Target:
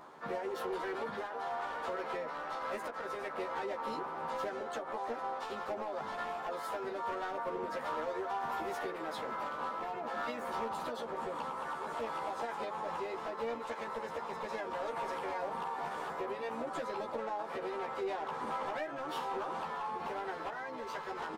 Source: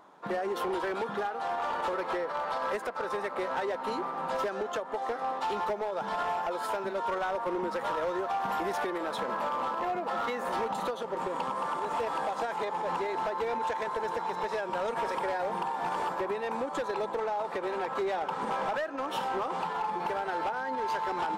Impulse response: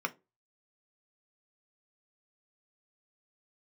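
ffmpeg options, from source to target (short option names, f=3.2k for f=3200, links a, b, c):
-filter_complex "[0:a]alimiter=level_in=11.5dB:limit=-24dB:level=0:latency=1:release=98,volume=-11.5dB,asplit=3[a][b][c];[b]asetrate=22050,aresample=44100,atempo=2,volume=-15dB[d];[c]asetrate=55563,aresample=44100,atempo=0.793701,volume=-6dB[e];[a][d][e]amix=inputs=3:normalize=0,asplit=2[f][g];[g]adelay=13,volume=-3dB[h];[f][h]amix=inputs=2:normalize=0"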